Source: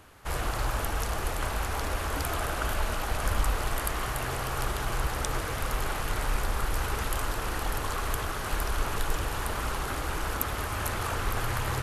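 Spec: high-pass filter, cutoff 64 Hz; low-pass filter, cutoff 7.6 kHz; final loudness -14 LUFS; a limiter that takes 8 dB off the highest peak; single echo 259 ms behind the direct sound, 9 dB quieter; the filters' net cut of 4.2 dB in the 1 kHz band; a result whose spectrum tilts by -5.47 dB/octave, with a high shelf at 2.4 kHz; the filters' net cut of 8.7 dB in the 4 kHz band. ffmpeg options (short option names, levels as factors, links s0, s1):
-af "highpass=64,lowpass=7600,equalizer=f=1000:t=o:g=-3.5,highshelf=f=2400:g=-8,equalizer=f=4000:t=o:g=-4,alimiter=level_in=1.5:limit=0.0631:level=0:latency=1,volume=0.668,aecho=1:1:259:0.355,volume=14.1"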